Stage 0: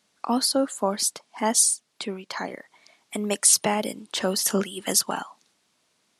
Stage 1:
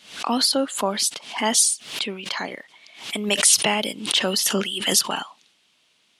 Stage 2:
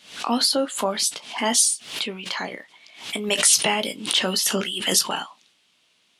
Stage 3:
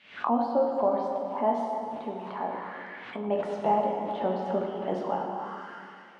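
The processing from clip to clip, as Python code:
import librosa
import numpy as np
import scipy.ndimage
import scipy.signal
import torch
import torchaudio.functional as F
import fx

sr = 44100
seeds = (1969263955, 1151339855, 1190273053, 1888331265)

y1 = fx.peak_eq(x, sr, hz=3000.0, db=12.5, octaves=0.99)
y1 = fx.pre_swell(y1, sr, db_per_s=110.0)
y2 = fx.room_early_taps(y1, sr, ms=(17, 33), db=(-9.5, -17.5))
y2 = y2 * 10.0 ** (-1.0 / 20.0)
y3 = fx.rev_plate(y2, sr, seeds[0], rt60_s=2.9, hf_ratio=0.75, predelay_ms=0, drr_db=-0.5)
y3 = fx.envelope_lowpass(y3, sr, base_hz=770.0, top_hz=2300.0, q=2.5, full_db=-21.5, direction='down')
y3 = y3 * 10.0 ** (-7.5 / 20.0)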